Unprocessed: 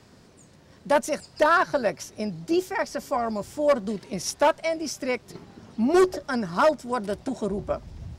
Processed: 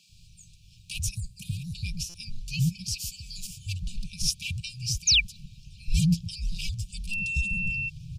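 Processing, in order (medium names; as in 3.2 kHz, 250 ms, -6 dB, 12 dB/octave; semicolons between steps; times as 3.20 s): 2.88–3.47 s: tilt shelf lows -7.5 dB; harmonic-percussive split percussive +4 dB; 1.11–1.75 s: high-order bell 3.1 kHz -11.5 dB 2.3 oct; 7.10–7.88 s: whistle 2.9 kHz -28 dBFS; frequency shift -200 Hz; 5.07–5.31 s: painted sound fall 890–7100 Hz -19 dBFS; brick-wall FIR band-stop 200–2300 Hz; bands offset in time highs, lows 90 ms, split 220 Hz; buffer glitch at 2.09 s, samples 256, times 8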